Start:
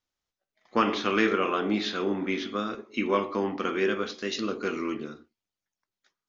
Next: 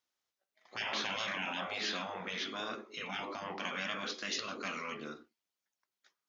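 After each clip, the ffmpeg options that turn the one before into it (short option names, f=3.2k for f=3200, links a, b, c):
-af "highpass=f=380:p=1,afftfilt=real='re*lt(hypot(re,im),0.0708)':imag='im*lt(hypot(re,im),0.0708)':win_size=1024:overlap=0.75"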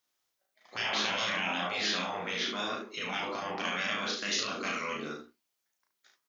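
-af "crystalizer=i=0.5:c=0,aecho=1:1:34|72:0.708|0.447,volume=3dB"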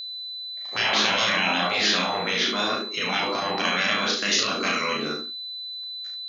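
-af "aeval=exprs='val(0)+0.00891*sin(2*PI*4000*n/s)':c=same,volume=9dB"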